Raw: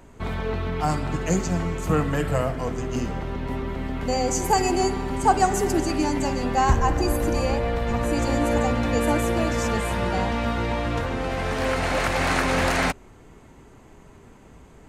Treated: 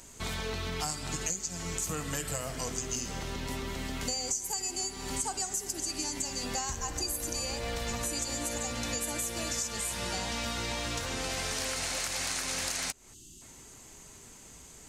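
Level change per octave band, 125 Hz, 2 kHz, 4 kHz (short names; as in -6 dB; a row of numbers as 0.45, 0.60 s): -14.5, -9.5, -0.5 dB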